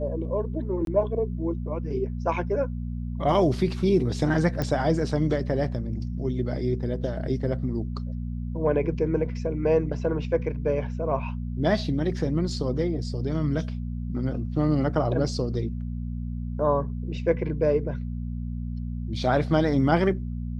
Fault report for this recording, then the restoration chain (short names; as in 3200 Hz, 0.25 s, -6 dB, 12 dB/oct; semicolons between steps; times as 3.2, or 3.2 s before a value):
hum 60 Hz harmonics 4 -31 dBFS
0.85–0.87 gap 22 ms
4.62 pop -14 dBFS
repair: de-click; de-hum 60 Hz, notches 4; interpolate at 0.85, 22 ms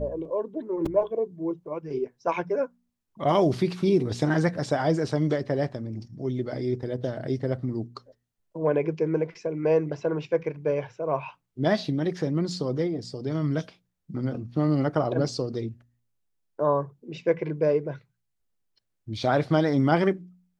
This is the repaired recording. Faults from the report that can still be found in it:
none